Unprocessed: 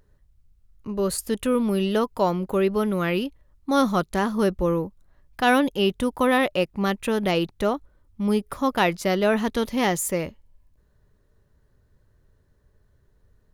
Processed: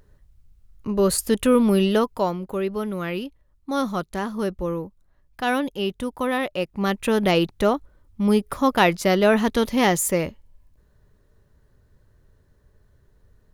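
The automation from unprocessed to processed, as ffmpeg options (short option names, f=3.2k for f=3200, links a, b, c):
-af "volume=12.5dB,afade=t=out:st=1.74:d=0.64:silence=0.354813,afade=t=in:st=6.54:d=0.62:silence=0.421697"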